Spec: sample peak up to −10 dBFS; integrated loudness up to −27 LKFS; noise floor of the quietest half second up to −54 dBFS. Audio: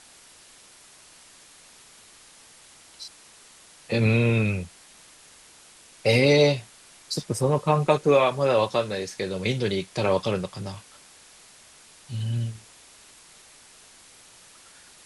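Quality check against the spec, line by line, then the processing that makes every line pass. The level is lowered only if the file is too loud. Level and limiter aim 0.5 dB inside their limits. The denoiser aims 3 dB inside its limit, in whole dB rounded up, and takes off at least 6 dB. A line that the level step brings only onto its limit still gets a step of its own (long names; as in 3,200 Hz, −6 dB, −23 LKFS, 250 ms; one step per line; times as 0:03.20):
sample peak −5.0 dBFS: out of spec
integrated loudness −24.0 LKFS: out of spec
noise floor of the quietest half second −52 dBFS: out of spec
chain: level −3.5 dB
brickwall limiter −10.5 dBFS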